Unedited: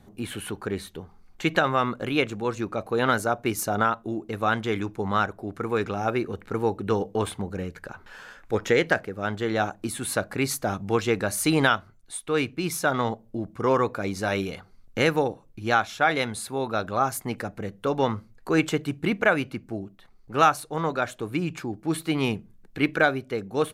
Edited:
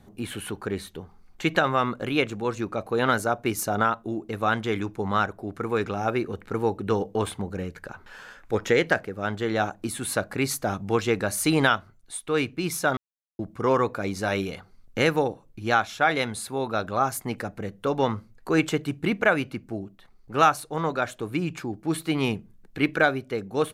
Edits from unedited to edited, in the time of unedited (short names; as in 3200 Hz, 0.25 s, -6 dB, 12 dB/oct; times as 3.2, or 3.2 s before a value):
12.97–13.39 mute